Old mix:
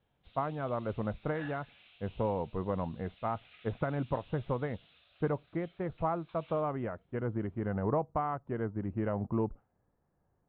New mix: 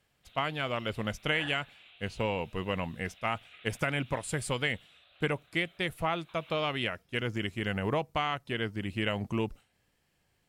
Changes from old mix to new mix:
speech: remove low-pass filter 1,200 Hz 24 dB per octave
background +4.5 dB

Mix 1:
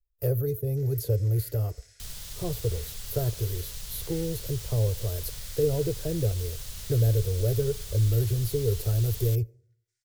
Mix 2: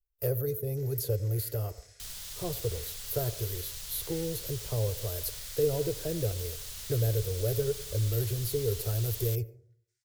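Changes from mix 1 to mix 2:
speech: send +11.5 dB
master: add low-shelf EQ 430 Hz −8.5 dB

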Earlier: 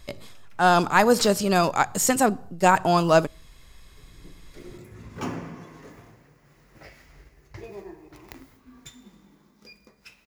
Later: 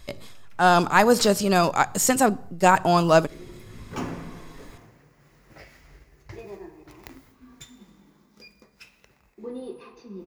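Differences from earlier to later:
speech: send +6.5 dB
second sound: entry −1.25 s

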